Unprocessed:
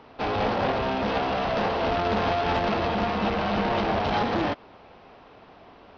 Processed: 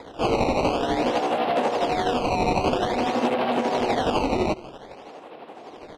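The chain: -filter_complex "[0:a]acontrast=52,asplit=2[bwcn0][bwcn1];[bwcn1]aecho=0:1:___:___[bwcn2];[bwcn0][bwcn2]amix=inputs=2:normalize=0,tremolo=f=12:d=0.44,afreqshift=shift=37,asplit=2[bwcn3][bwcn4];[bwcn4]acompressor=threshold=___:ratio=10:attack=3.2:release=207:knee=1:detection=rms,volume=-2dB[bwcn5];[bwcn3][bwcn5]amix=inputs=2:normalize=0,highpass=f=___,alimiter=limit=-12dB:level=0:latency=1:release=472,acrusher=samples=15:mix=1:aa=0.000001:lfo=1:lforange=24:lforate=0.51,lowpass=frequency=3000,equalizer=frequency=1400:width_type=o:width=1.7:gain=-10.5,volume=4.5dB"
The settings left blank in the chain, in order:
171, 0.0891, -31dB, 330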